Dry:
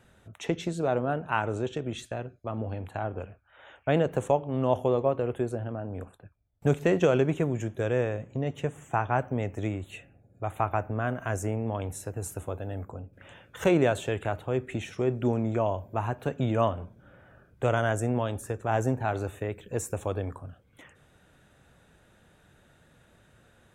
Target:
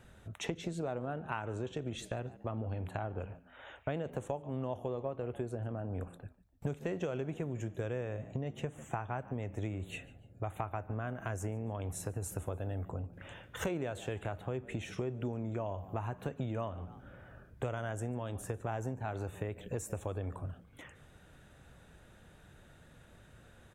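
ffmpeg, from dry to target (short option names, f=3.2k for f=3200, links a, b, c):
-filter_complex "[0:a]lowshelf=f=76:g=8,asplit=3[a][b][c];[b]adelay=145,afreqshift=80,volume=-22dB[d];[c]adelay=290,afreqshift=160,volume=-31.9dB[e];[a][d][e]amix=inputs=3:normalize=0,acompressor=threshold=-34dB:ratio=6"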